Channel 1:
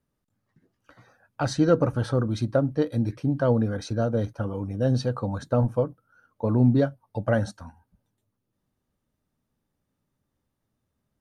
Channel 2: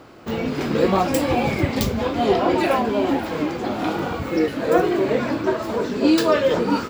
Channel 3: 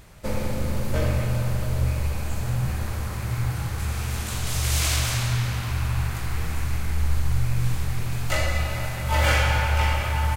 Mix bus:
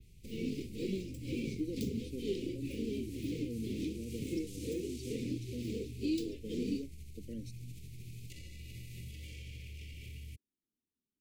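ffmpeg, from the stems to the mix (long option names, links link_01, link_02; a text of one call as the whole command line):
ffmpeg -i stem1.wav -i stem2.wav -i stem3.wav -filter_complex "[0:a]lowshelf=frequency=180:width_type=q:width=1.5:gain=-10,volume=-14dB[link_01];[1:a]aeval=exprs='sgn(val(0))*max(abs(val(0))-0.02,0)':channel_layout=same,tremolo=f=2.1:d=0.94,volume=-5dB[link_02];[2:a]lowshelf=frequency=120:gain=7.5,alimiter=limit=-19dB:level=0:latency=1:release=63,volume=-13.5dB[link_03];[link_01][link_02][link_03]amix=inputs=3:normalize=0,adynamicequalizer=threshold=0.00251:dfrequency=8200:dqfactor=0.75:tfrequency=8200:tqfactor=0.75:attack=5:release=100:ratio=0.375:range=2:mode=boostabove:tftype=bell,acrossover=split=110|1200[link_04][link_05][link_06];[link_04]acompressor=threshold=-52dB:ratio=4[link_07];[link_05]acompressor=threshold=-32dB:ratio=4[link_08];[link_06]acompressor=threshold=-49dB:ratio=4[link_09];[link_07][link_08][link_09]amix=inputs=3:normalize=0,asuperstop=centerf=1000:order=12:qfactor=0.54" out.wav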